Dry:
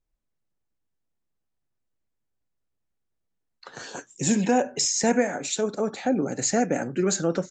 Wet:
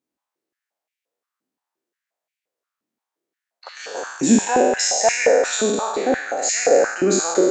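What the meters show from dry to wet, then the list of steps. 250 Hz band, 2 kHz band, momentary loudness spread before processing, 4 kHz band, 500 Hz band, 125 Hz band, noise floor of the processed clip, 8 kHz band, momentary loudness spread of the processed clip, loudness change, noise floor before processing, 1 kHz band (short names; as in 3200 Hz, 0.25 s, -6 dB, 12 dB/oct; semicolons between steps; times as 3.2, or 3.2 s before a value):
+3.5 dB, +9.0 dB, 11 LU, +6.0 dB, +8.5 dB, -2.0 dB, under -85 dBFS, +6.0 dB, 10 LU, +6.5 dB, -79 dBFS, +7.5 dB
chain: spectral trails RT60 1.48 s; stepped high-pass 5.7 Hz 260–2300 Hz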